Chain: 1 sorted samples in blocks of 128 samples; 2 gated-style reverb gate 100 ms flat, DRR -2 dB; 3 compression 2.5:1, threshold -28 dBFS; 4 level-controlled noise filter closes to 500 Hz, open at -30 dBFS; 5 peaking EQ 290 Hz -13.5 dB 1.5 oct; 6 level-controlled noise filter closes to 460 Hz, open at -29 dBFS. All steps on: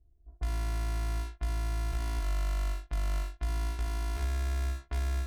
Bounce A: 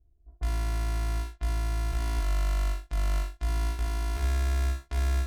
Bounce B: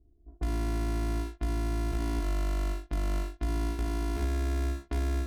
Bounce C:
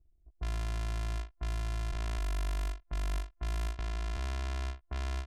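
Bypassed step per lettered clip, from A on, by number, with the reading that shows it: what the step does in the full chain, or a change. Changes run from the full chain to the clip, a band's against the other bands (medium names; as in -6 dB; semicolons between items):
3, momentary loudness spread change +1 LU; 5, 250 Hz band +11.5 dB; 2, loudness change -3.0 LU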